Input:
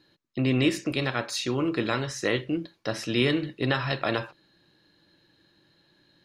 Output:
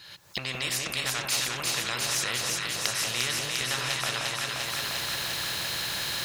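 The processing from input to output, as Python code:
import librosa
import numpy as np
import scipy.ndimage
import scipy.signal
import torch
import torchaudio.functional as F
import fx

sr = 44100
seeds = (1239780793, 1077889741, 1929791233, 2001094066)

p1 = fx.recorder_agc(x, sr, target_db=-18.5, rise_db_per_s=53.0, max_gain_db=30)
p2 = scipy.signal.sosfilt(scipy.signal.butter(2, 73.0, 'highpass', fs=sr, output='sos'), p1)
p3 = fx.tone_stack(p2, sr, knobs='10-0-10')
p4 = 10.0 ** (-21.0 / 20.0) * np.tanh(p3 / 10.0 ** (-21.0 / 20.0))
p5 = p3 + F.gain(torch.from_numpy(p4), -11.0).numpy()
p6 = fx.echo_alternate(p5, sr, ms=175, hz=1100.0, feedback_pct=84, wet_db=-2.5)
p7 = fx.spectral_comp(p6, sr, ratio=2.0)
y = F.gain(torch.from_numpy(p7), 1.5).numpy()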